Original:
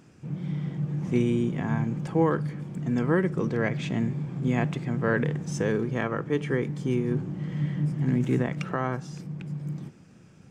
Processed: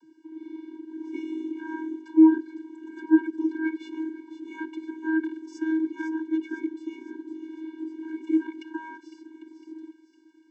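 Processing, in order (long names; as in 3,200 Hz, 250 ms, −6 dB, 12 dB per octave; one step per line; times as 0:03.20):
delay with a high-pass on its return 506 ms, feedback 52%, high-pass 3,600 Hz, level −8 dB
channel vocoder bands 32, square 318 Hz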